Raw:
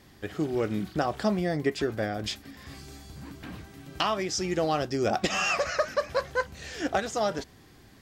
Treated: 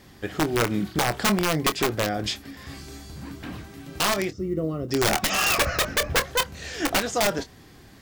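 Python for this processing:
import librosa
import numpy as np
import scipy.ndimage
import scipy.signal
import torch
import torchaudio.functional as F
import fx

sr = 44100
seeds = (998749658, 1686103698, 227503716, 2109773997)

y = fx.moving_average(x, sr, points=54, at=(4.29, 4.88), fade=0.02)
y = fx.tilt_eq(y, sr, slope=-3.0, at=(5.58, 6.2))
y = fx.quant_companded(y, sr, bits=8)
y = (np.mod(10.0 ** (19.5 / 20.0) * y + 1.0, 2.0) - 1.0) / 10.0 ** (19.5 / 20.0)
y = fx.doubler(y, sr, ms=25.0, db=-11)
y = F.gain(torch.from_numpy(y), 4.5).numpy()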